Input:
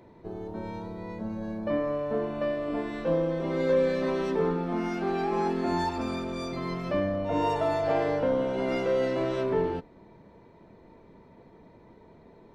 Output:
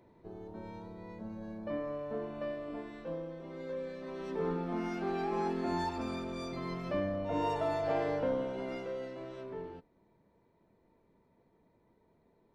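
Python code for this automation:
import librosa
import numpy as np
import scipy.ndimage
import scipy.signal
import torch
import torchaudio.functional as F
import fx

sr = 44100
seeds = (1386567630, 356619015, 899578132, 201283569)

y = fx.gain(x, sr, db=fx.line((2.51, -9.0), (3.45, -16.0), (4.04, -16.0), (4.52, -6.0), (8.28, -6.0), (9.15, -16.0)))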